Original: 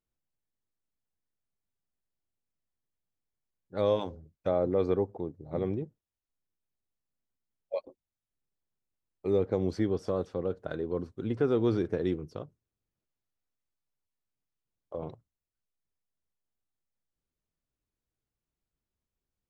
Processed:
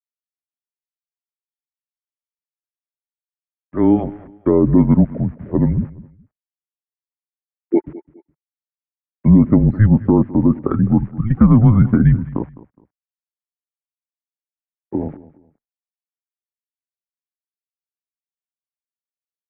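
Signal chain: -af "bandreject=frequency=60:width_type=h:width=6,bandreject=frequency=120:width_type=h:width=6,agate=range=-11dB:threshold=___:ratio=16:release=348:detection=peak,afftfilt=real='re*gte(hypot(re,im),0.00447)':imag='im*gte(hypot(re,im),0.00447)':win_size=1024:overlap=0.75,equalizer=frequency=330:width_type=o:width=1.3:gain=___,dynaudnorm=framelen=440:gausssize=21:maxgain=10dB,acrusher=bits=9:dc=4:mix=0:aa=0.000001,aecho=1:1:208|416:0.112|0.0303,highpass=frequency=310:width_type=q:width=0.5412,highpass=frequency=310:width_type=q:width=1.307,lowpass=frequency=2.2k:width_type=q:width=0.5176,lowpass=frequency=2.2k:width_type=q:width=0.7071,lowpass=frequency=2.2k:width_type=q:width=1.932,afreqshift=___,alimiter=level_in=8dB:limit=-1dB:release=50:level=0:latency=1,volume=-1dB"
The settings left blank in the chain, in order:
-50dB, 5, -220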